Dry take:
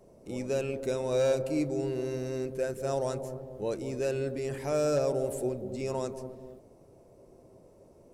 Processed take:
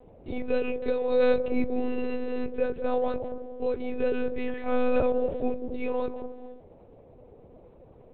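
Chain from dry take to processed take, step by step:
one-pitch LPC vocoder at 8 kHz 250 Hz
level +4.5 dB

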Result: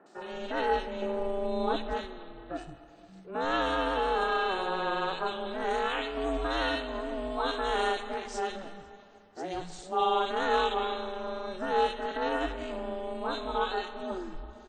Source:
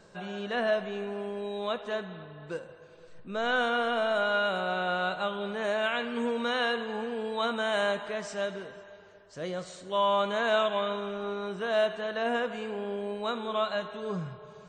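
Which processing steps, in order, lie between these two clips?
0:01.02–0:01.88: low-shelf EQ 370 Hz +11.5 dB
ring modulation 190 Hz
three-band delay without the direct sound mids, highs, lows 60/170 ms, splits 190/1,900 Hz
level +3 dB

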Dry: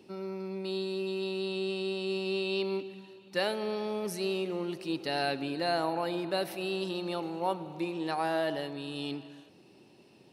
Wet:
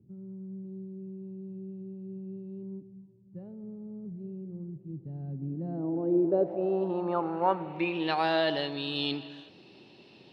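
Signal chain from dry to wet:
low-pass filter sweep 130 Hz → 3,800 Hz, 0:05.26–0:08.24
level +3 dB

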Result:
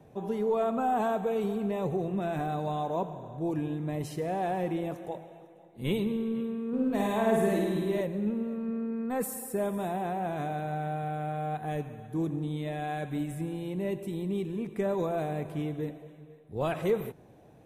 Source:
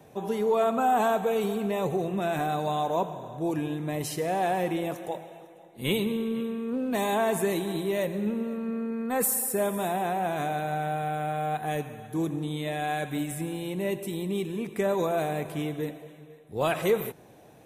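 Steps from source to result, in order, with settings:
spectral tilt −2 dB per octave
0:06.68–0:08.01: flutter between parallel walls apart 9.2 metres, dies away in 1.1 s
level −5.5 dB

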